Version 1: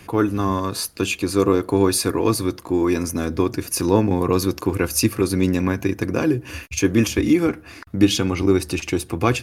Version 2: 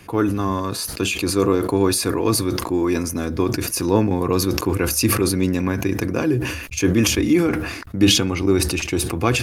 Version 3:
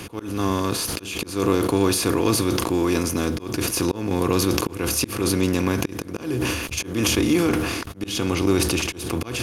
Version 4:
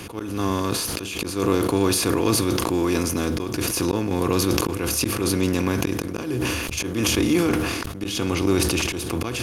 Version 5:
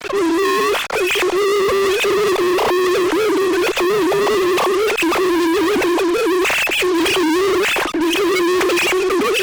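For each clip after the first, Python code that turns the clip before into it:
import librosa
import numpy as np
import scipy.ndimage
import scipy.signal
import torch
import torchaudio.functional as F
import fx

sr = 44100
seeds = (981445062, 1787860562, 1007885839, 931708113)

y1 = fx.sustainer(x, sr, db_per_s=50.0)
y1 = y1 * librosa.db_to_amplitude(-1.0)
y2 = fx.bin_compress(y1, sr, power=0.6)
y2 = fx.auto_swell(y2, sr, attack_ms=258.0)
y2 = y2 * librosa.db_to_amplitude(-5.0)
y3 = fx.sustainer(y2, sr, db_per_s=30.0)
y3 = y3 * librosa.db_to_amplitude(-1.0)
y4 = fx.sine_speech(y3, sr)
y4 = fx.fuzz(y4, sr, gain_db=40.0, gate_db=-44.0)
y4 = y4 * librosa.db_to_amplitude(-1.5)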